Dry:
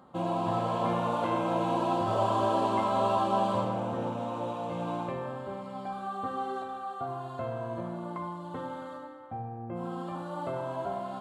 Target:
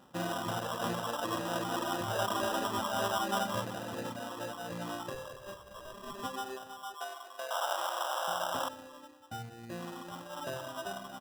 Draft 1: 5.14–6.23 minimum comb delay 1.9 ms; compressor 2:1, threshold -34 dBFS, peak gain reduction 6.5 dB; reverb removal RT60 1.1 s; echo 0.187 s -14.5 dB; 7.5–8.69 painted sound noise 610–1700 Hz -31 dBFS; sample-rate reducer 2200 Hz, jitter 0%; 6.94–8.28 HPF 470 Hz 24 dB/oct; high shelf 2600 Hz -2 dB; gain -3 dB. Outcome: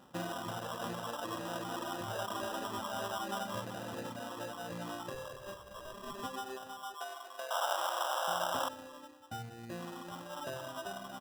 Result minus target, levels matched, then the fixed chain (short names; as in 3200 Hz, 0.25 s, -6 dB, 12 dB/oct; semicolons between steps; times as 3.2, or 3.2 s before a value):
compressor: peak gain reduction +6.5 dB
5.14–6.23 minimum comb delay 1.9 ms; reverb removal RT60 1.1 s; echo 0.187 s -14.5 dB; 7.5–8.69 painted sound noise 610–1700 Hz -31 dBFS; sample-rate reducer 2200 Hz, jitter 0%; 6.94–8.28 HPF 470 Hz 24 dB/oct; high shelf 2600 Hz -2 dB; gain -3 dB